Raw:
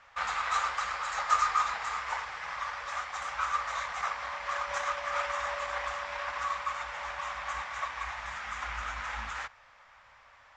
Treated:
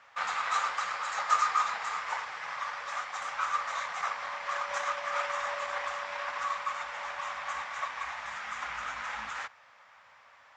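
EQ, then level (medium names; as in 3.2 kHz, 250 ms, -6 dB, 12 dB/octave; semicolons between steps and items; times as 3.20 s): high-pass 150 Hz 12 dB/octave; 0.0 dB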